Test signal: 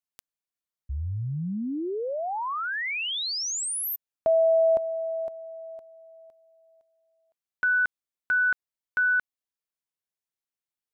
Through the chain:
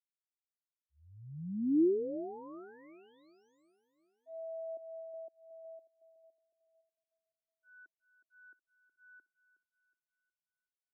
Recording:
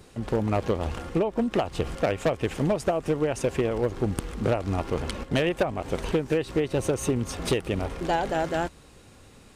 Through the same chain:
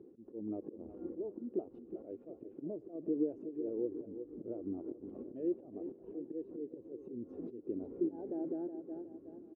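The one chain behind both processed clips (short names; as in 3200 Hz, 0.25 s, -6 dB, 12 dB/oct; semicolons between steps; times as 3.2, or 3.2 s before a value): auto swell 0.514 s; compressor 2:1, threshold -42 dBFS; on a send: feedback echo 0.367 s, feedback 56%, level -9 dB; on the sum: limiter -32.5 dBFS; band-pass 330 Hz, Q 2.8; spectral expander 1.5:1; gain +13 dB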